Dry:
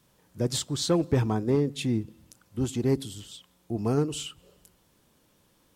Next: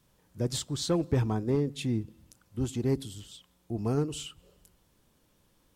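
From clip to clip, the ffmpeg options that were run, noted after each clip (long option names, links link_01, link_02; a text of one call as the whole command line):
ffmpeg -i in.wav -af "lowshelf=frequency=62:gain=11,volume=-4dB" out.wav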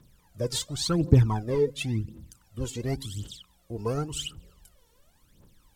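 ffmpeg -i in.wav -af "aphaser=in_gain=1:out_gain=1:delay=2.3:decay=0.79:speed=0.92:type=triangular" out.wav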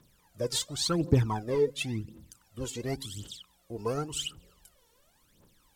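ffmpeg -i in.wav -af "lowshelf=frequency=180:gain=-9.5" out.wav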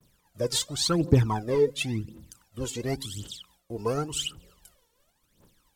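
ffmpeg -i in.wav -af "agate=range=-33dB:threshold=-59dB:ratio=3:detection=peak,volume=3.5dB" out.wav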